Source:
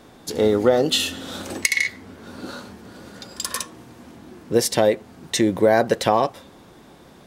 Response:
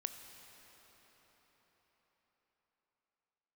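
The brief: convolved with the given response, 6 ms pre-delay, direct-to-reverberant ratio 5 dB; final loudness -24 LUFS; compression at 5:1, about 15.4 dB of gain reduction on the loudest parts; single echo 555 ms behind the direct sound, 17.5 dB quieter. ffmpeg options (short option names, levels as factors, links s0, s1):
-filter_complex "[0:a]acompressor=threshold=0.0316:ratio=5,aecho=1:1:555:0.133,asplit=2[s0][s1];[1:a]atrim=start_sample=2205,adelay=6[s2];[s1][s2]afir=irnorm=-1:irlink=0,volume=0.668[s3];[s0][s3]amix=inputs=2:normalize=0,volume=2.82"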